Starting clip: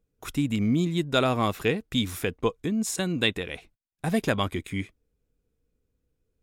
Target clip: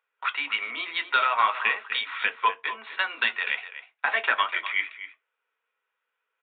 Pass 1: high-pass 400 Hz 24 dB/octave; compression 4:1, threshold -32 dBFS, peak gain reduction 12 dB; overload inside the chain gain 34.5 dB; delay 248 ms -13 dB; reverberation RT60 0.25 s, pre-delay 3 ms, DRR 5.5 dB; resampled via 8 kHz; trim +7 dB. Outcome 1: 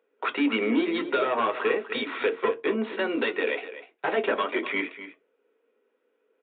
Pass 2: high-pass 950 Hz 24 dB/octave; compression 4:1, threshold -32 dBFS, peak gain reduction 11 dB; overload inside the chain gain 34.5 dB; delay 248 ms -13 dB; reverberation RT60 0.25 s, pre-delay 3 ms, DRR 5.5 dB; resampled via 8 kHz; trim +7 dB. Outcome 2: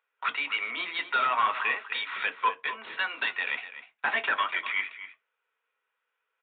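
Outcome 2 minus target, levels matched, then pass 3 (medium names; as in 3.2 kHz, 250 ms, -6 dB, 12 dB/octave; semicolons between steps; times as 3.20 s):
overload inside the chain: distortion +11 dB
high-pass 950 Hz 24 dB/octave; compression 4:1, threshold -32 dBFS, peak gain reduction 11 dB; overload inside the chain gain 24.5 dB; delay 248 ms -13 dB; reverberation RT60 0.25 s, pre-delay 3 ms, DRR 5.5 dB; resampled via 8 kHz; trim +7 dB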